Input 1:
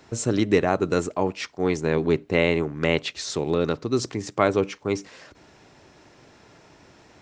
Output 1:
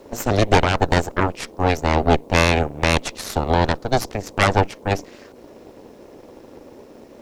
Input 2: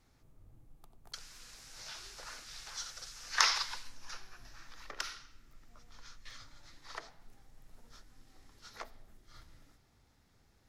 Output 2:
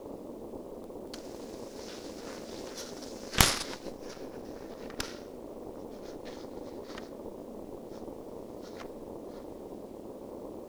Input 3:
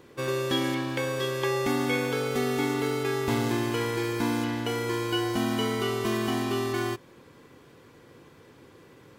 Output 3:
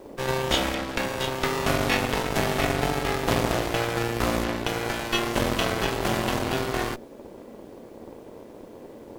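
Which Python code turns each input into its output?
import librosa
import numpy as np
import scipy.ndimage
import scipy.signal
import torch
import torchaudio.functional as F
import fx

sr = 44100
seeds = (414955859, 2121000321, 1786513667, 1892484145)

y = fx.dmg_noise_band(x, sr, seeds[0], low_hz=210.0, high_hz=580.0, level_db=-41.0)
y = fx.cheby_harmonics(y, sr, harmonics=(3, 4, 7, 8), levels_db=(-30, -8, -36, -9), full_scale_db=-3.5)
y = fx.quant_dither(y, sr, seeds[1], bits=10, dither='none')
y = y * 10.0 ** (-1.0 / 20.0)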